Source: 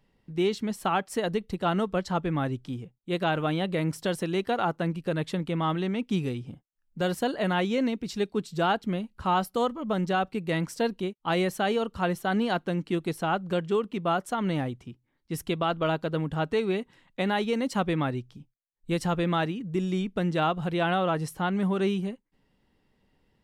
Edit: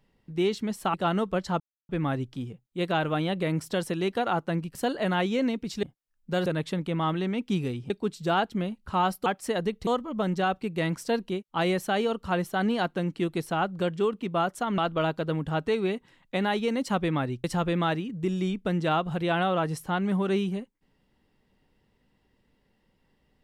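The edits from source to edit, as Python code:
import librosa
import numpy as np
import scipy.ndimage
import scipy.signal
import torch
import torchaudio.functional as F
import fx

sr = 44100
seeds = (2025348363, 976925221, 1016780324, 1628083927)

y = fx.edit(x, sr, fx.move(start_s=0.94, length_s=0.61, to_s=9.58),
    fx.insert_silence(at_s=2.21, length_s=0.29),
    fx.swap(start_s=5.07, length_s=1.44, other_s=7.14, other_length_s=1.08),
    fx.cut(start_s=14.49, length_s=1.14),
    fx.cut(start_s=18.29, length_s=0.66), tone=tone)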